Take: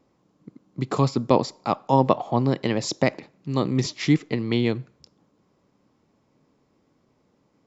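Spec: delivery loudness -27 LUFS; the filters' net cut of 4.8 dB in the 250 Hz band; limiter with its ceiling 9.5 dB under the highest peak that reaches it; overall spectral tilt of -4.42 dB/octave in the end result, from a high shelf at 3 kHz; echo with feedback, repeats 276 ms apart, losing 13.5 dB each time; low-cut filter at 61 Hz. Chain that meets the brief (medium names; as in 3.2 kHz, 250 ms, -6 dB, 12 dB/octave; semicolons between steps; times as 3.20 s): high-pass 61 Hz; peaking EQ 250 Hz -6 dB; treble shelf 3 kHz +7.5 dB; peak limiter -12.5 dBFS; feedback delay 276 ms, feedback 21%, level -13.5 dB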